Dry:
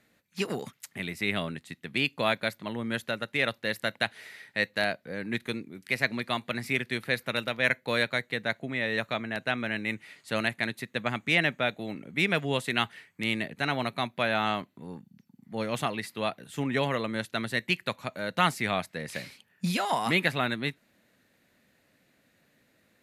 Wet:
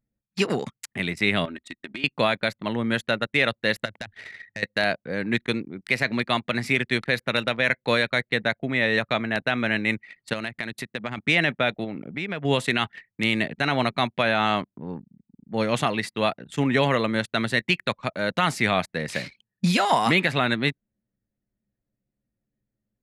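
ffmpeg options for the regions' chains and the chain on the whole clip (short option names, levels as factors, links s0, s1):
-filter_complex "[0:a]asettb=1/sr,asplit=3[s0][s1][s2];[s0]atrim=end=1.454[s3];[s1]atrim=start=1.45:end=2.04,asetpts=PTS-STARTPTS,afade=t=in:d=0.004:c=qsin,afade=t=out:st=0.586:d=0.004:c=qsin,equalizer=f=100:t=o:w=1.6:g=-4,aecho=1:1:3.2:0.8,atrim=end_sample=26019,acompressor=threshold=0.0126:ratio=16:attack=3.2:release=140:knee=1:detection=peak[s4];[s2]atrim=start=2.036[s5];[s3][s4]acrossfade=d=0.004:c1=hsin:c2=qsin[s6];[s6][s5]acrossfade=d=0.004:c1=qsin:c2=hsin,asettb=1/sr,asplit=3[s7][s8][s9];[s7]atrim=end=3.854[s10];[s8]atrim=start=3.85:end=4.63,asetpts=PTS-STARTPTS,afade=t=in:d=0.004:c=qsin,afade=t=out:st=0.776:d=0.004:c=qsin,equalizer=f=99:w=3.5:g=12,acompressor=threshold=0.0178:ratio=16:attack=3.2:release=140:knee=1:detection=peak,asoftclip=type=hard:threshold=0.0282[s11];[s9]atrim=start=4.626[s12];[s10][s11]acrossfade=d=0.004:c1=hsin:c2=qsin[s13];[s13][s12]acrossfade=d=0.004:c1=qsin:c2=hsin,asettb=1/sr,asplit=3[s14][s15][s16];[s14]atrim=end=10.334[s17];[s15]atrim=start=10.33:end=11.18,asetpts=PTS-STARTPTS,afade=t=in:d=0.004:c=qsin,afade=t=out:st=0.846:d=0.004:c=qsin,highshelf=f=9100:g=4.5,acompressor=threshold=0.02:ratio=5:attack=3.2:release=140:knee=1:detection=peak[s18];[s16]atrim=start=11.176[s19];[s17][s18]acrossfade=d=0.004:c1=hsin:c2=qsin[s20];[s20][s19]acrossfade=d=0.004:c1=qsin:c2=hsin,asettb=1/sr,asplit=3[s21][s22][s23];[s21]atrim=end=11.844[s24];[s22]atrim=start=11.84:end=12.45,asetpts=PTS-STARTPTS,afade=t=in:d=0.004:c=qsin,afade=t=out:st=0.606:d=0.004:c=qsin,highshelf=f=4800:g=-10,acompressor=threshold=0.0158:ratio=3:attack=3.2:release=140:knee=1:detection=peak[s25];[s23]atrim=start=12.446[s26];[s24][s25]acrossfade=d=0.004:c1=hsin:c2=qsin[s27];[s27][s26]acrossfade=d=0.004:c1=qsin:c2=hsin,lowpass=8800,anlmdn=0.0251,alimiter=level_in=5.31:limit=0.891:release=50:level=0:latency=1,volume=0.447"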